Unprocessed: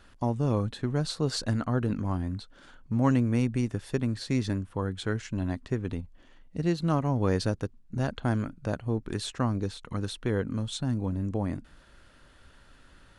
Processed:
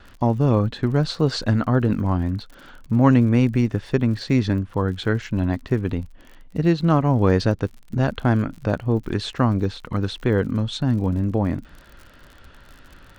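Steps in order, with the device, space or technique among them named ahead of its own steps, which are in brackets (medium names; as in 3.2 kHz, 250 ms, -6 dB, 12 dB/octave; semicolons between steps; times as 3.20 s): lo-fi chain (low-pass 4.2 kHz 12 dB/octave; wow and flutter 29 cents; crackle 54 per s -44 dBFS); trim +8.5 dB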